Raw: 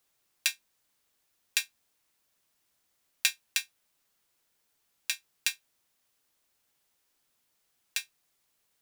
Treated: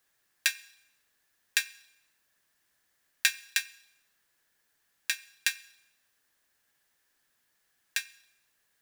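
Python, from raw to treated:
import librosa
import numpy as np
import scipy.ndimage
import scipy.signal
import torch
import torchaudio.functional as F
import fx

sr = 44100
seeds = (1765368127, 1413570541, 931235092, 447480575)

y = fx.peak_eq(x, sr, hz=1700.0, db=12.5, octaves=0.32)
y = fx.rev_schroeder(y, sr, rt60_s=0.88, comb_ms=30, drr_db=19.0)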